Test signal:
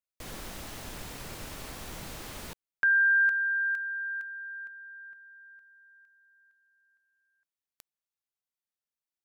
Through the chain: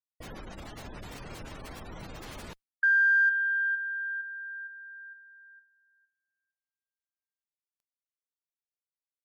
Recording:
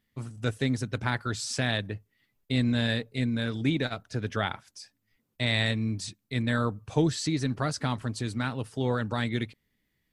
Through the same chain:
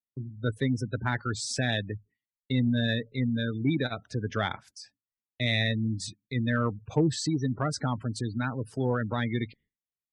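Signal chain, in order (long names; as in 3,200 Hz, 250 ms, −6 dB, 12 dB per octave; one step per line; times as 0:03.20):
gate on every frequency bin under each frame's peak −20 dB strong
harmonic generator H 4 −32 dB, 5 −39 dB, 6 −35 dB, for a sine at −11 dBFS
downward expander −50 dBFS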